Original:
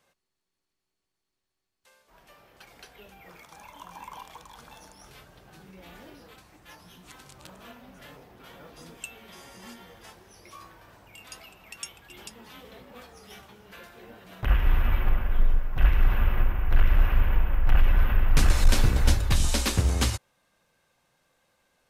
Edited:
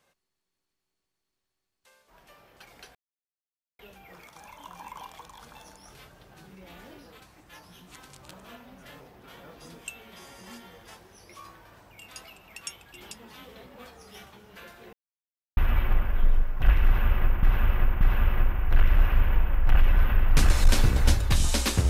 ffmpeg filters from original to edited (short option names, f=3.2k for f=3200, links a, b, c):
-filter_complex "[0:a]asplit=6[a][b][c][d][e][f];[a]atrim=end=2.95,asetpts=PTS-STARTPTS,afade=t=out:st=2.946:d=0.004:c=hsin,apad=pad_dur=0.84[g];[b]atrim=start=2.95:end=14.09,asetpts=PTS-STARTPTS,afade=t=in:d=0.004:c=hsin,afade=t=out:st=11.136:d=0.004:c=hsin[h];[c]atrim=start=14.09:end=14.73,asetpts=PTS-STARTPTS,volume=0[i];[d]atrim=start=14.73:end=16.592,asetpts=PTS-STARTPTS,afade=t=in:d=0.004:c=hsin[j];[e]atrim=start=16.008:end=16.592[k];[f]atrim=start=16.008[l];[g][h][i][j]concat=n=4:v=0:a=1[m];[m][k]acrossfade=d=0.004:c1=hsin:c2=hsin[n];[n][l]acrossfade=d=0.004:c1=hsin:c2=hsin"